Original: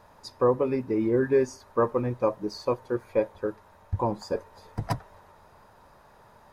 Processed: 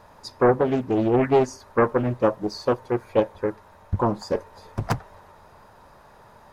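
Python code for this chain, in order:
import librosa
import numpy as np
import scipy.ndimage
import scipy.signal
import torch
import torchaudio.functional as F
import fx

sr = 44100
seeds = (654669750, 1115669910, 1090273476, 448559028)

y = fx.doppler_dist(x, sr, depth_ms=0.91)
y = y * 10.0 ** (4.5 / 20.0)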